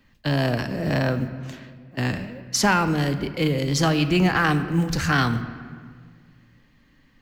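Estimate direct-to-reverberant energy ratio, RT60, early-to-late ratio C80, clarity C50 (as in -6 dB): 9.5 dB, 1.8 s, 12.5 dB, 11.5 dB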